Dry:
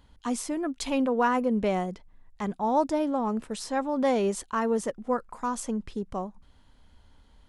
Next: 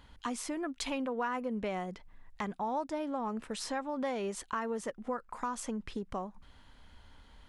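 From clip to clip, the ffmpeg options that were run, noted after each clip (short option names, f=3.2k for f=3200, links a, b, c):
-af "equalizer=f=1.9k:w=0.55:g=6.5,acompressor=threshold=-36dB:ratio=3"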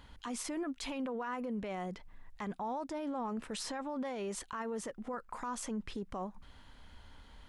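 -af "alimiter=level_in=9dB:limit=-24dB:level=0:latency=1:release=14,volume=-9dB,volume=1.5dB"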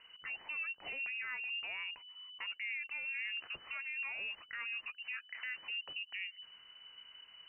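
-af "lowpass=f=2.6k:t=q:w=0.5098,lowpass=f=2.6k:t=q:w=0.6013,lowpass=f=2.6k:t=q:w=0.9,lowpass=f=2.6k:t=q:w=2.563,afreqshift=-3000,volume=-3dB"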